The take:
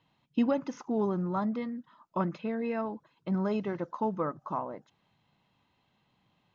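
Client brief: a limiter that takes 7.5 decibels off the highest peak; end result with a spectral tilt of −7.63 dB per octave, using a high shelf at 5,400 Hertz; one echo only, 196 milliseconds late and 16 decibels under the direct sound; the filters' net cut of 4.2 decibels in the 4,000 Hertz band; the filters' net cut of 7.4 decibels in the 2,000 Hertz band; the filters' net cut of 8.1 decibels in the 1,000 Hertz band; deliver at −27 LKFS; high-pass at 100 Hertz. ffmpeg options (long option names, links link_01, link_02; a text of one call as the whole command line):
ffmpeg -i in.wav -af "highpass=100,equalizer=frequency=1000:width_type=o:gain=-8.5,equalizer=frequency=2000:width_type=o:gain=-6.5,equalizer=frequency=4000:width_type=o:gain=-4,highshelf=frequency=5400:gain=4,alimiter=level_in=2dB:limit=-24dB:level=0:latency=1,volume=-2dB,aecho=1:1:196:0.158,volume=9dB" out.wav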